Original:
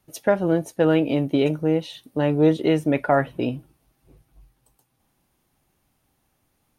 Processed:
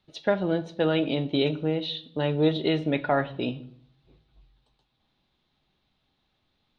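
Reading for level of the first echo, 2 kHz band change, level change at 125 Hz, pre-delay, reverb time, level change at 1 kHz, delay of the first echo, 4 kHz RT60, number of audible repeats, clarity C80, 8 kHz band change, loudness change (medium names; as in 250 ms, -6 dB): no echo, -2.5 dB, -4.0 dB, 5 ms, 0.60 s, -4.5 dB, no echo, 0.50 s, no echo, 20.5 dB, no reading, -4.5 dB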